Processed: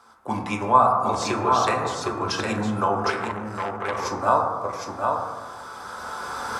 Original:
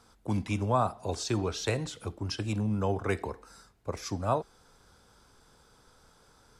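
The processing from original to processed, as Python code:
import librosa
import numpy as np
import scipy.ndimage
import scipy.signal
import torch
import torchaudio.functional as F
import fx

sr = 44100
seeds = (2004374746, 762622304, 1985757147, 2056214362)

p1 = fx.recorder_agc(x, sr, target_db=-17.5, rise_db_per_s=11.0, max_gain_db=30)
p2 = fx.highpass(p1, sr, hz=310.0, slope=6)
p3 = fx.peak_eq(p2, sr, hz=1100.0, db=11.0, octaves=1.5)
p4 = p3 + fx.echo_single(p3, sr, ms=760, db=-4.5, dry=0)
p5 = fx.rev_fdn(p4, sr, rt60_s=1.5, lf_ratio=1.25, hf_ratio=0.3, size_ms=80.0, drr_db=0.5)
y = fx.transformer_sat(p5, sr, knee_hz=1600.0, at=(3.1, 4.05))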